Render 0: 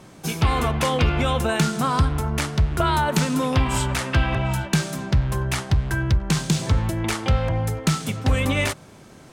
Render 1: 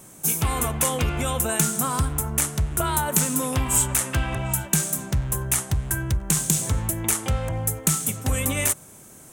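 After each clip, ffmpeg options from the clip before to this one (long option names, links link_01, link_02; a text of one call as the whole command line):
ffmpeg -i in.wav -af "aexciter=amount=7.3:drive=6.4:freq=6700,volume=-4.5dB" out.wav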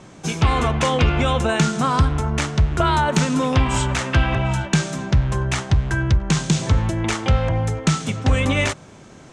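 ffmpeg -i in.wav -af "lowpass=frequency=5100:width=0.5412,lowpass=frequency=5100:width=1.3066,volume=7dB" out.wav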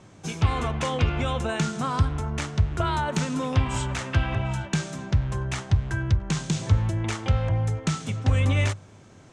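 ffmpeg -i in.wav -af "equalizer=frequency=100:width_type=o:width=0.29:gain=11,volume=-8dB" out.wav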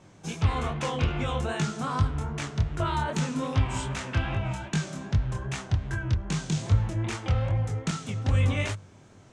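ffmpeg -i in.wav -af "flanger=delay=19.5:depth=7.7:speed=2.5" out.wav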